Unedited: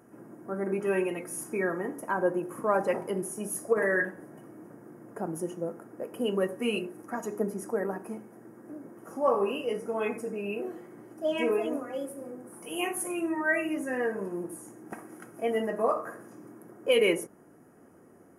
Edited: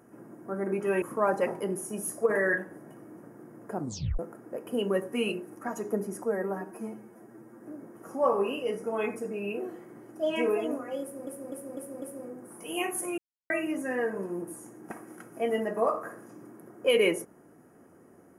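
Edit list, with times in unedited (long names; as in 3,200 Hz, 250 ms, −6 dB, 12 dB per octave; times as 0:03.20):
0:01.02–0:02.49: remove
0:05.25: tape stop 0.41 s
0:07.72–0:08.62: time-stretch 1.5×
0:12.04–0:12.29: repeat, 5 plays
0:13.20–0:13.52: silence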